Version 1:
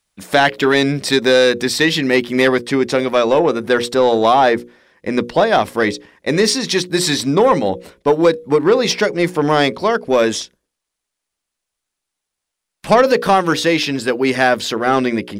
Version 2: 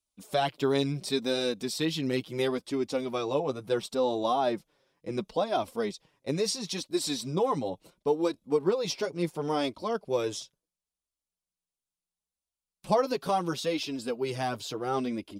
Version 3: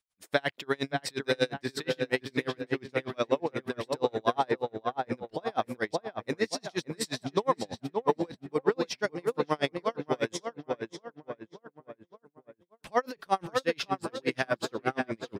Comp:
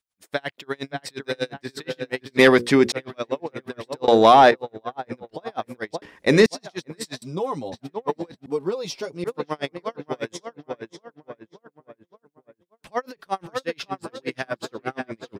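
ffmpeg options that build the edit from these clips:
-filter_complex "[0:a]asplit=3[s0][s1][s2];[1:a]asplit=2[s3][s4];[2:a]asplit=6[s5][s6][s7][s8][s9][s10];[s5]atrim=end=2.392[s11];[s0]atrim=start=2.388:end=2.922[s12];[s6]atrim=start=2.918:end=4.082[s13];[s1]atrim=start=4.078:end=4.512[s14];[s7]atrim=start=4.508:end=6.022[s15];[s2]atrim=start=6.018:end=6.462[s16];[s8]atrim=start=6.458:end=7.222[s17];[s3]atrim=start=7.218:end=7.722[s18];[s9]atrim=start=7.718:end=8.462[s19];[s4]atrim=start=8.458:end=9.242[s20];[s10]atrim=start=9.238[s21];[s11][s12]acrossfade=d=0.004:c1=hsin:c2=hsin[s22];[s22][s13]acrossfade=d=0.004:c1=hsin:c2=hsin[s23];[s23][s14]acrossfade=d=0.004:c1=hsin:c2=hsin[s24];[s24][s15]acrossfade=d=0.004:c1=hsin:c2=hsin[s25];[s25][s16]acrossfade=d=0.004:c1=hsin:c2=hsin[s26];[s26][s17]acrossfade=d=0.004:c1=hsin:c2=hsin[s27];[s27][s18]acrossfade=d=0.004:c1=hsin:c2=hsin[s28];[s28][s19]acrossfade=d=0.004:c1=hsin:c2=hsin[s29];[s29][s20]acrossfade=d=0.004:c1=hsin:c2=hsin[s30];[s30][s21]acrossfade=d=0.004:c1=hsin:c2=hsin"

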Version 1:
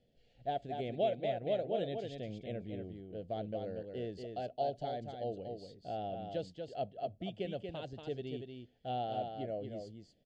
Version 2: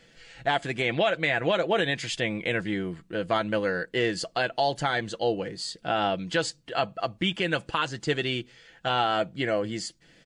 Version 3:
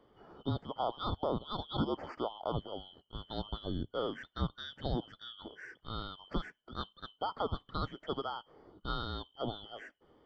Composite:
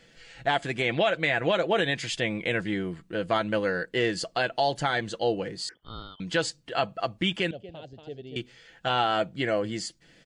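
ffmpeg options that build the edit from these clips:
-filter_complex "[1:a]asplit=3[s0][s1][s2];[s0]atrim=end=5.692[s3];[2:a]atrim=start=5.688:end=6.202[s4];[s1]atrim=start=6.198:end=7.512[s5];[0:a]atrim=start=7.508:end=8.362[s6];[s2]atrim=start=8.358[s7];[s3][s4]acrossfade=d=0.004:c1=hsin:c2=hsin[s8];[s8][s5]acrossfade=d=0.004:c1=hsin:c2=hsin[s9];[s9][s6]acrossfade=d=0.004:c1=hsin:c2=hsin[s10];[s10][s7]acrossfade=d=0.004:c1=hsin:c2=hsin"

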